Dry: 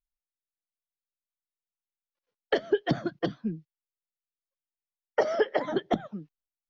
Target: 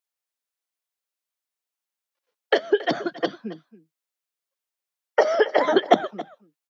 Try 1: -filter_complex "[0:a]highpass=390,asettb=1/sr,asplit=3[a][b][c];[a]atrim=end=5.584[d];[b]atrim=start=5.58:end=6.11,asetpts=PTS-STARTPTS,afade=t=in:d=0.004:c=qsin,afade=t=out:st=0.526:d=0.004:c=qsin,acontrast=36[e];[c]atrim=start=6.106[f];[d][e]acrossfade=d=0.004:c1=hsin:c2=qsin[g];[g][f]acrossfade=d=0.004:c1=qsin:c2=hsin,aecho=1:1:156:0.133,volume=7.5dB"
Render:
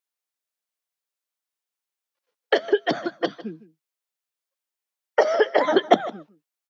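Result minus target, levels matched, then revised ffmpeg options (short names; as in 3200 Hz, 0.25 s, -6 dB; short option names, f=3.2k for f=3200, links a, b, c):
echo 0.119 s early
-filter_complex "[0:a]highpass=390,asettb=1/sr,asplit=3[a][b][c];[a]atrim=end=5.584[d];[b]atrim=start=5.58:end=6.11,asetpts=PTS-STARTPTS,afade=t=in:d=0.004:c=qsin,afade=t=out:st=0.526:d=0.004:c=qsin,acontrast=36[e];[c]atrim=start=6.106[f];[d][e]acrossfade=d=0.004:c1=hsin:c2=qsin[g];[g][f]acrossfade=d=0.004:c1=qsin:c2=hsin,aecho=1:1:275:0.133,volume=7.5dB"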